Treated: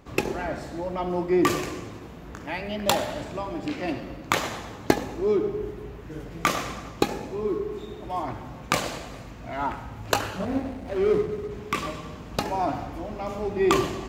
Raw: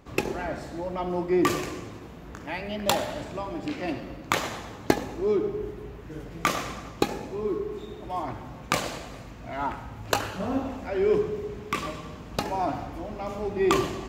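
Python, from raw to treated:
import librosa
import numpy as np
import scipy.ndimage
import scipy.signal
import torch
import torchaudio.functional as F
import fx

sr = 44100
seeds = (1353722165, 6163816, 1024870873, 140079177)

y = fx.median_filter(x, sr, points=41, at=(10.45, 11.51))
y = y * librosa.db_to_amplitude(1.5)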